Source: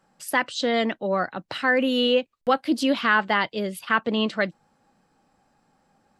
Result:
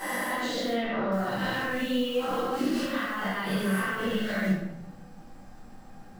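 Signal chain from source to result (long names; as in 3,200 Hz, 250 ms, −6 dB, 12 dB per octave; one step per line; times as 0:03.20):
peak hold with a rise ahead of every peak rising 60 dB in 1.21 s
compressor whose output falls as the input rises −24 dBFS, ratio −0.5
low-shelf EQ 100 Hz +11.5 dB
brickwall limiter −26.5 dBFS, peak gain reduction 21 dB
floating-point word with a short mantissa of 2 bits
0:00.72–0:01.12: low-pass filter 3,800 Hz 24 dB per octave
rectangular room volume 230 cubic metres, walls mixed, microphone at 3.7 metres
level −6.5 dB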